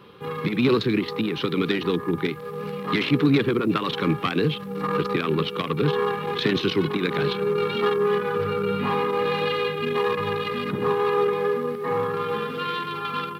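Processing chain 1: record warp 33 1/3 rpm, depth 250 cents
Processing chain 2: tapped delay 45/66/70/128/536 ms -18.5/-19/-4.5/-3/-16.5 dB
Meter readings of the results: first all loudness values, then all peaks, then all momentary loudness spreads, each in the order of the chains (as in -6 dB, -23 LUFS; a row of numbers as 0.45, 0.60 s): -24.0, -21.5 LUFS; -7.0, -5.0 dBFS; 6, 6 LU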